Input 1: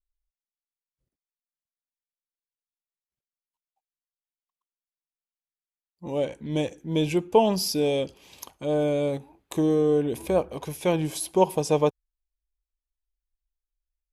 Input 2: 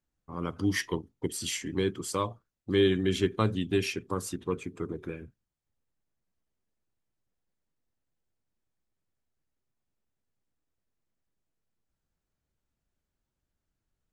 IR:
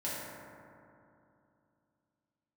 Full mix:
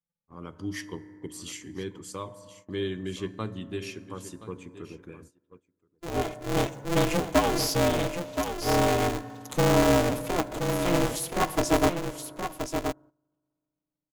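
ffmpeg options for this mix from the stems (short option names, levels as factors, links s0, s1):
-filter_complex "[0:a]asoftclip=type=tanh:threshold=0.168,aecho=1:1:6.5:0.88,aeval=exprs='val(0)*sgn(sin(2*PI*170*n/s))':c=same,volume=0.631,asplit=3[s0][s1][s2];[s1]volume=0.119[s3];[s2]volume=0.473[s4];[1:a]volume=0.398,asplit=3[s5][s6][s7];[s6]volume=0.15[s8];[s7]volume=0.211[s9];[2:a]atrim=start_sample=2205[s10];[s3][s8]amix=inputs=2:normalize=0[s11];[s11][s10]afir=irnorm=-1:irlink=0[s12];[s4][s9]amix=inputs=2:normalize=0,aecho=0:1:1024:1[s13];[s0][s5][s12][s13]amix=inputs=4:normalize=0,agate=range=0.178:threshold=0.00316:ratio=16:detection=peak,equalizer=f=6800:t=o:w=0.23:g=4"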